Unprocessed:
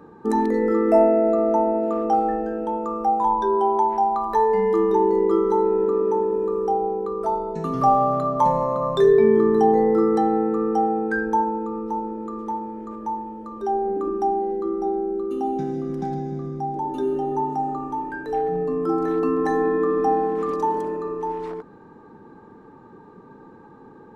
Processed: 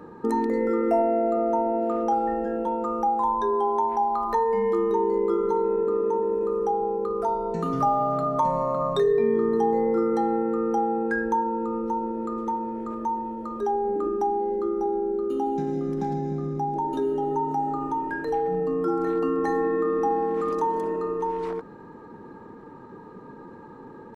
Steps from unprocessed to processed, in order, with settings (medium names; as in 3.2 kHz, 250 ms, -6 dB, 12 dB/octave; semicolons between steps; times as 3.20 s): compression 2:1, threshold -28 dBFS, peak gain reduction 9.5 dB; pitch shift +0.5 st; trim +2.5 dB